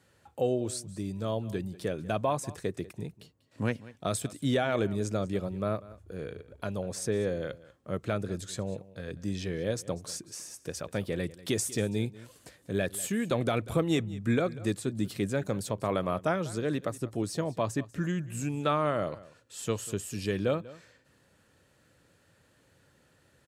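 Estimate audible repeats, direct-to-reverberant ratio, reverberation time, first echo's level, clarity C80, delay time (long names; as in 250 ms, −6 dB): 1, no reverb audible, no reverb audible, −19.0 dB, no reverb audible, 192 ms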